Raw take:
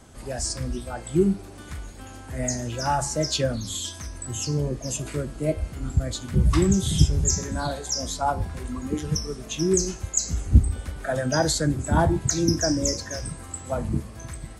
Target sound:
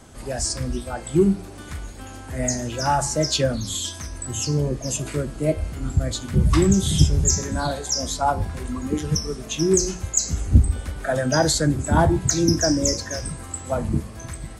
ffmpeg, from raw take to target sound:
-filter_complex "[0:a]bandreject=f=60:t=h:w=6,bandreject=f=120:t=h:w=6,bandreject=f=180:t=h:w=6,asplit=2[s0][s1];[s1]asoftclip=type=hard:threshold=0.15,volume=0.251[s2];[s0][s2]amix=inputs=2:normalize=0,volume=1.19"

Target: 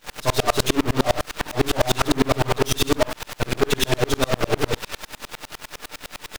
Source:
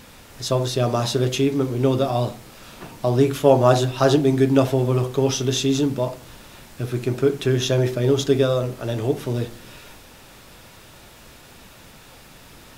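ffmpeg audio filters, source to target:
-filter_complex "[0:a]aecho=1:1:6.7:0.57,alimiter=limit=0.266:level=0:latency=1:release=38,aecho=1:1:106:0.447,acontrast=52,asplit=2[s0][s1];[s1]highpass=f=720:p=1,volume=11.2,asoftclip=type=tanh:threshold=0.631[s2];[s0][s2]amix=inputs=2:normalize=0,lowpass=f=3400:p=1,volume=0.501,atempo=2,aeval=exprs='0.596*(cos(1*acos(clip(val(0)/0.596,-1,1)))-cos(1*PI/2))+0.15*(cos(8*acos(clip(val(0)/0.596,-1,1)))-cos(8*PI/2))':c=same,acrusher=bits=4:mix=0:aa=0.000001,aeval=exprs='val(0)*pow(10,-34*if(lt(mod(-9.9*n/s,1),2*abs(-9.9)/1000),1-mod(-9.9*n/s,1)/(2*abs(-9.9)/1000),(mod(-9.9*n/s,1)-2*abs(-9.9)/1000)/(1-2*abs(-9.9)/1000))/20)':c=same,volume=0.841"

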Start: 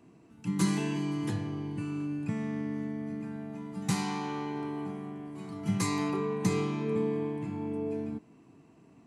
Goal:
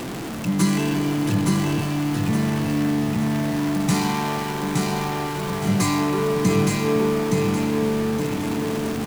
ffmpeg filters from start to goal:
-af "aeval=exprs='val(0)+0.5*0.0282*sgn(val(0))':c=same,aecho=1:1:868|1736|2604|3472|4340:0.708|0.255|0.0917|0.033|0.0119,volume=2"

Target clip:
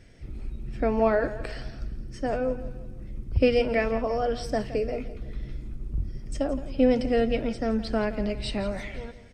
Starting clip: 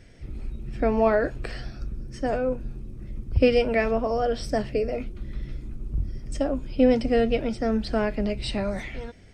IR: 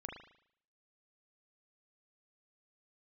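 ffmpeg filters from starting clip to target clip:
-af "aecho=1:1:168|336|504|672:0.188|0.0791|0.0332|0.014,volume=0.794"

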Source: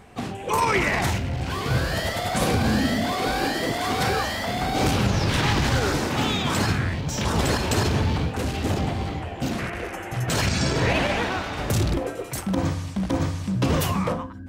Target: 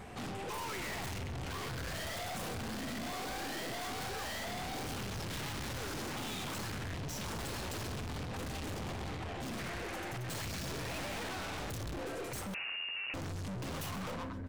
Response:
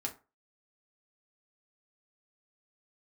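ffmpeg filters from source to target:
-filter_complex "[0:a]aeval=exprs='(tanh(112*val(0)+0.2)-tanh(0.2))/112':c=same,aecho=1:1:132|264|396:0.168|0.0604|0.0218,asettb=1/sr,asplit=3[s0][s1][s2];[s0]atrim=end=12.544[s3];[s1]atrim=start=12.54:end=13.14,asetpts=PTS-STARTPTS,afade=t=in:d=0.004:c=qsin,afade=t=out:st=0.596:d=0.004:c=qsin,lowpass=f=2500:t=q:w=0.5098,lowpass=f=2500:t=q:w=0.6013,lowpass=f=2500:t=q:w=0.9,lowpass=f=2500:t=q:w=2.563,afreqshift=-2900[s4];[s2]atrim=start=13.136[s5];[s3][s4]acrossfade=d=0.004:c1=hsin:c2=qsin[s6];[s6][s5]acrossfade=d=0.004:c1=qsin:c2=hsin,volume=1.19"

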